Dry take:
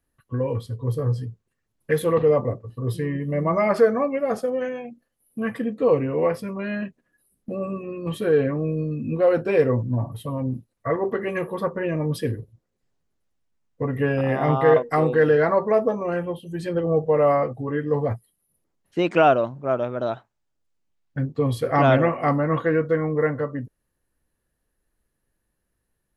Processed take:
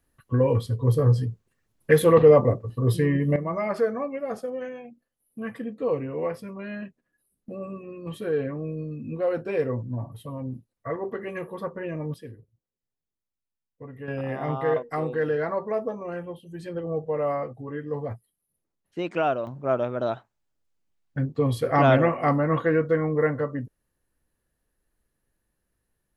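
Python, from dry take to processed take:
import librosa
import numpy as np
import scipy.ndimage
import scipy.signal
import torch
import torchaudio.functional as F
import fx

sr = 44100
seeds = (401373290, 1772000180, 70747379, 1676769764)

y = fx.gain(x, sr, db=fx.steps((0.0, 4.0), (3.36, -7.0), (12.14, -16.0), (14.08, -8.0), (19.47, -1.0)))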